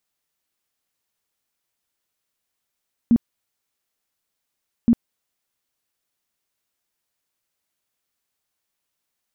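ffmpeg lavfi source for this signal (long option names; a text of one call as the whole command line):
ffmpeg -f lavfi -i "aevalsrc='0.299*sin(2*PI*234*mod(t,1.77))*lt(mod(t,1.77),12/234)':duration=3.54:sample_rate=44100" out.wav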